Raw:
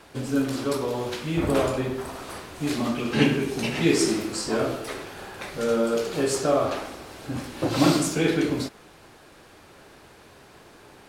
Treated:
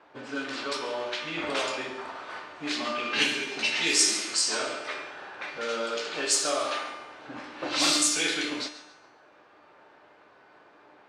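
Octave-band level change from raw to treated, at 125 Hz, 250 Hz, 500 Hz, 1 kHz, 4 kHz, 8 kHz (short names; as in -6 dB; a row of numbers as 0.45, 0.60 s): -22.0, -12.0, -8.5, -2.0, +5.5, +6.0 dB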